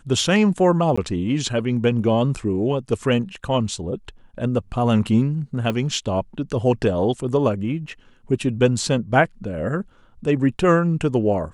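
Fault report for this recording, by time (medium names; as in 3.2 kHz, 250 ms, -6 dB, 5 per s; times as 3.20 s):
0.96–0.97 s: dropout 15 ms
5.70 s: pop -12 dBFS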